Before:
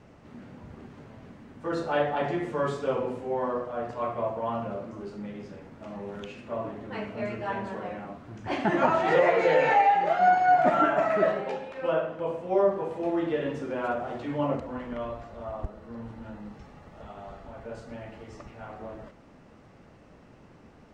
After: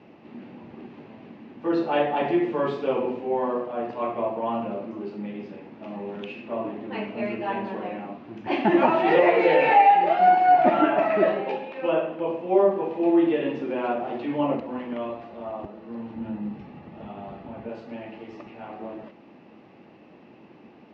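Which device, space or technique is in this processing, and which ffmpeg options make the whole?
kitchen radio: -filter_complex "[0:a]highpass=170,equalizer=f=220:t=q:w=4:g=5,equalizer=f=340:t=q:w=4:g=8,equalizer=f=820:t=q:w=4:g=4,equalizer=f=1.4k:t=q:w=4:g=-5,equalizer=f=2.6k:t=q:w=4:g=7,lowpass=f=4.5k:w=0.5412,lowpass=f=4.5k:w=1.3066,asettb=1/sr,asplit=3[a][b][c];[a]atrim=end=16.154[d];[b]atrim=start=16.15:end=17.69,asetpts=PTS-STARTPTS,afade=t=in:d=0.004:c=qsin,afade=t=out:st=1.536:d=0.004:c=qsin,bass=f=250:g=10,treble=f=4k:g=-4[e];[c]atrim=start=17.686[f];[d][e]acrossfade=d=0.004:c1=hsin:c2=qsin[g];[g][f]acrossfade=d=0.004:c1=qsin:c2=hsin,volume=1.5dB"

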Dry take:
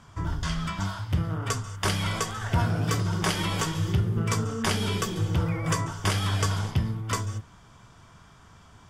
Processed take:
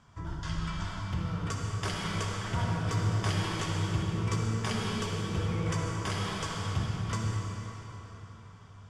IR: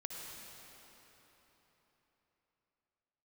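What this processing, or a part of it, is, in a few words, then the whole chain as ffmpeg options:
cathedral: -filter_complex "[0:a]lowpass=8.4k[a];[1:a]atrim=start_sample=2205[b];[a][b]afir=irnorm=-1:irlink=0,volume=-4dB"

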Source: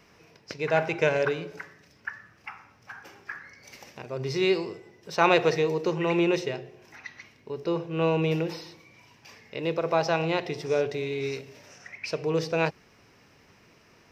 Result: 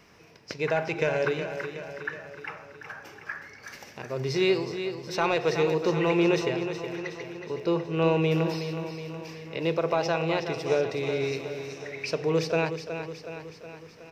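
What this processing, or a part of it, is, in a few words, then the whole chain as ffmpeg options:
soft clipper into limiter: -af "asoftclip=type=tanh:threshold=-8dB,alimiter=limit=-15.5dB:level=0:latency=1:release=368,aecho=1:1:369|738|1107|1476|1845|2214|2583:0.355|0.206|0.119|0.0692|0.0402|0.0233|0.0135,volume=1.5dB"

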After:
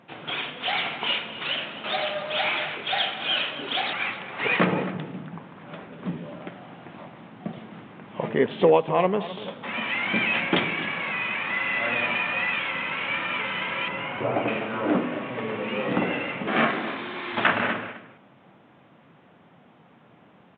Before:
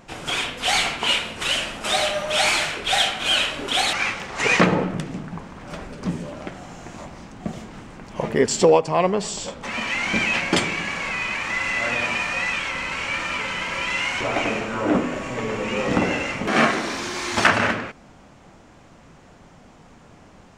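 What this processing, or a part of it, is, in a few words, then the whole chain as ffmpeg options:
Bluetooth headset: -filter_complex "[0:a]asettb=1/sr,asplit=3[a][b][c];[a]atrim=end=13.884[d];[b]atrim=start=13.88:end=14.48,asetpts=PTS-STARTPTS,afade=t=in:d=0.004:c=qsin,afade=t=out:st=0.596:d=0.004:c=qsin,equalizer=f=125:t=o:w=1:g=7,equalizer=f=500:t=o:w=1:g=4,equalizer=f=2k:t=o:w=1:g=-5,equalizer=f=4k:t=o:w=1:g=-12[e];[c]atrim=start=14.476[f];[d][e]acrossfade=d=0.004:c1=hsin:c2=qsin[g];[g][f]acrossfade=d=0.004:c1=qsin:c2=hsin,highpass=f=120:w=0.5412,highpass=f=120:w=1.3066,aecho=1:1:260:0.178,dynaudnorm=f=210:g=31:m=11.5dB,aresample=8000,aresample=44100,volume=-5dB" -ar 16000 -c:a sbc -b:a 64k

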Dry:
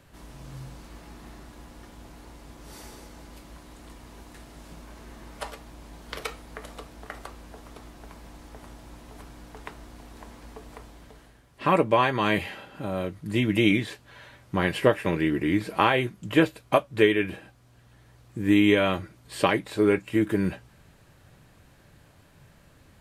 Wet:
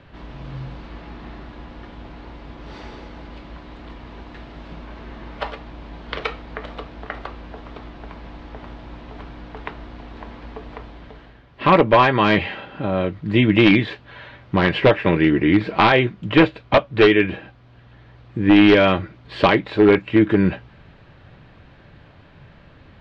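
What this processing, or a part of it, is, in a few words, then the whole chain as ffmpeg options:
synthesiser wavefolder: -af "aeval=exprs='0.211*(abs(mod(val(0)/0.211+3,4)-2)-1)':c=same,lowpass=f=3.8k:w=0.5412,lowpass=f=3.8k:w=1.3066,volume=8.5dB"

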